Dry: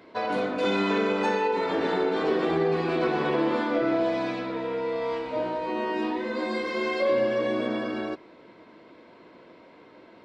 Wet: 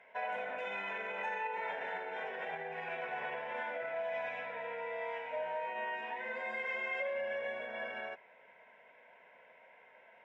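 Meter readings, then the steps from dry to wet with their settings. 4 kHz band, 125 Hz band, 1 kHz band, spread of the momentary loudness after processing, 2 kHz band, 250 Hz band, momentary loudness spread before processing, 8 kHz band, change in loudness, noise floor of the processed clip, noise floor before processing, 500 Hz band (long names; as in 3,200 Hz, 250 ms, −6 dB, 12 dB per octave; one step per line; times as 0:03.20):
−14.5 dB, −26.0 dB, −10.0 dB, 4 LU, −5.0 dB, −30.5 dB, 6 LU, can't be measured, −12.0 dB, −61 dBFS, −52 dBFS, −14.5 dB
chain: brickwall limiter −21.5 dBFS, peak gain reduction 7 dB
resonant band-pass 1,600 Hz, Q 0.88
phaser with its sweep stopped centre 1,200 Hz, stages 6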